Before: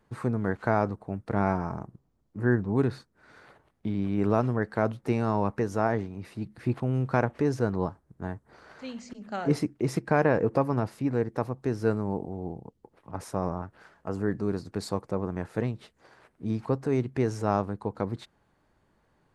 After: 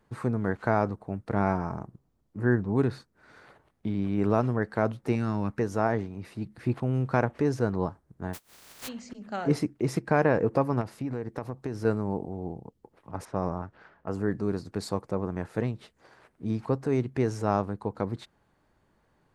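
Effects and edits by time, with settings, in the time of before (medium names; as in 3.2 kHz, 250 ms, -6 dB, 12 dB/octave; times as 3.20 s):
5.15–5.59 s: high-order bell 660 Hz -9 dB
8.33–8.87 s: spectral contrast reduction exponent 0.14
10.81–11.85 s: compression 10:1, threshold -27 dBFS
13.25–14.08 s: level-controlled noise filter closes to 2.2 kHz, open at -25.5 dBFS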